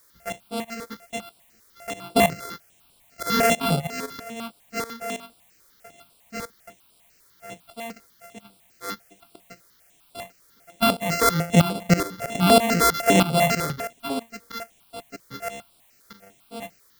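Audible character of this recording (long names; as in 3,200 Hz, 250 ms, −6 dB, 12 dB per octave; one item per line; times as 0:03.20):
a buzz of ramps at a fixed pitch in blocks of 64 samples
tremolo saw up 3.1 Hz, depth 85%
a quantiser's noise floor 10 bits, dither triangular
notches that jump at a steady rate 10 Hz 750–6,400 Hz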